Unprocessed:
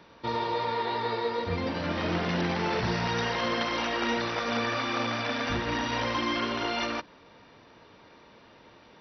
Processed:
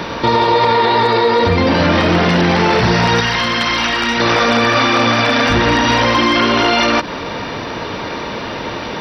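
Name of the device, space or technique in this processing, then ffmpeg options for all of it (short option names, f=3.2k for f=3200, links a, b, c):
loud club master: -filter_complex "[0:a]acompressor=threshold=-35dB:ratio=2,asoftclip=type=hard:threshold=-25.5dB,alimiter=level_in=34.5dB:limit=-1dB:release=50:level=0:latency=1,asettb=1/sr,asplit=3[a][b][c];[a]atrim=end=3.204[d];[b]atrim=start=3.2:end=4.2,asetpts=PTS-STARTPTS,afade=t=in:d=0.004:c=qsin,afade=t=out:st=0.996:d=0.004:c=qsin,equalizer=f=480:t=o:w=1.8:g=-10[e];[c]atrim=start=4.196[f];[d][e]acrossfade=d=0.004:c1=hsin:c2=qsin[g];[g][f]acrossfade=d=0.004:c1=qsin:c2=hsin,volume=-4dB"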